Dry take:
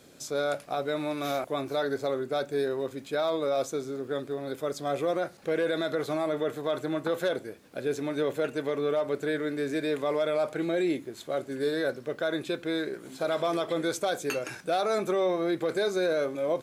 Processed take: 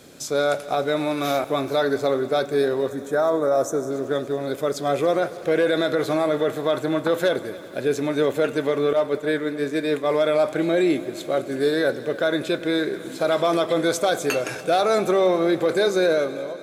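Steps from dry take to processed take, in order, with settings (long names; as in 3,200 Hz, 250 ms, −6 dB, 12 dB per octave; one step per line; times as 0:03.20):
fade-out on the ending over 0.51 s
0:02.88–0:03.91: gain on a spectral selection 2,000–5,300 Hz −14 dB
0:08.93–0:10.10: downward expander −26 dBFS
on a send: echo machine with several playback heads 95 ms, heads all three, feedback 70%, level −23 dB
on the sum: level +7.5 dB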